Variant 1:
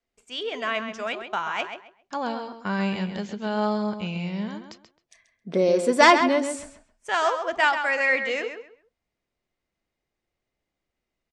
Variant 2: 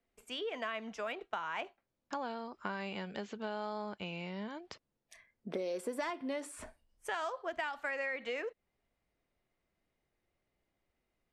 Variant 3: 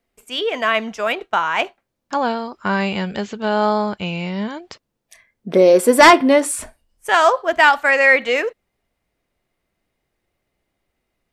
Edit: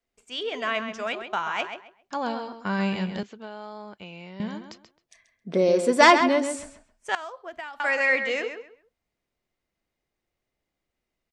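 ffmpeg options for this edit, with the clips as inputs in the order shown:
-filter_complex "[1:a]asplit=2[a][b];[0:a]asplit=3[c][d][e];[c]atrim=end=3.232[f];[a]atrim=start=3.228:end=4.402[g];[d]atrim=start=4.398:end=7.152[h];[b]atrim=start=7.148:end=7.802[i];[e]atrim=start=7.798[j];[f][g]acrossfade=d=0.004:c1=hsin:c2=hsin[k];[k][h]acrossfade=d=0.004:c1=hsin:c2=hsin[l];[l][i]acrossfade=d=0.004:c1=hsin:c2=hsin[m];[m][j]acrossfade=d=0.004:c1=hsin:c2=hsin"

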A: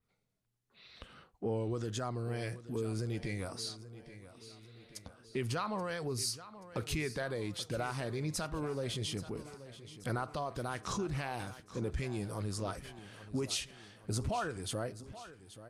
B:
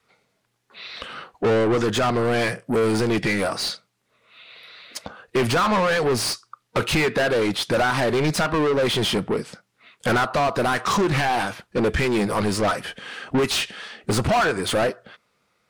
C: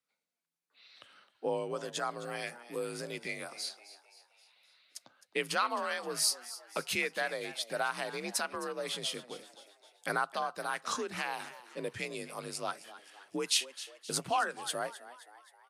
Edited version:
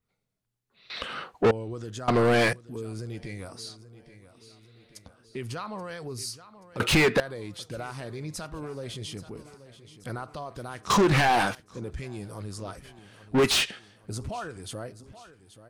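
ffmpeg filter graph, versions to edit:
-filter_complex "[1:a]asplit=5[a][b][c][d][e];[0:a]asplit=6[f][g][h][i][j][k];[f]atrim=end=0.902[l];[a]atrim=start=0.898:end=1.512[m];[g]atrim=start=1.508:end=2.082[n];[b]atrim=start=2.078:end=2.532[o];[h]atrim=start=2.528:end=6.802[p];[c]atrim=start=6.798:end=7.202[q];[i]atrim=start=7.198:end=10.902[r];[d]atrim=start=10.898:end=11.552[s];[j]atrim=start=11.548:end=13.4[t];[e]atrim=start=13.3:end=13.8[u];[k]atrim=start=13.7[v];[l][m]acrossfade=d=0.004:c1=hsin:c2=hsin[w];[w][n]acrossfade=d=0.004:c1=hsin:c2=hsin[x];[x][o]acrossfade=d=0.004:c1=hsin:c2=hsin[y];[y][p]acrossfade=d=0.004:c1=hsin:c2=hsin[z];[z][q]acrossfade=d=0.004:c1=hsin:c2=hsin[aa];[aa][r]acrossfade=d=0.004:c1=hsin:c2=hsin[ab];[ab][s]acrossfade=d=0.004:c1=hsin:c2=hsin[ac];[ac][t]acrossfade=d=0.004:c1=hsin:c2=hsin[ad];[ad][u]acrossfade=d=0.1:c1=tri:c2=tri[ae];[ae][v]acrossfade=d=0.1:c1=tri:c2=tri"

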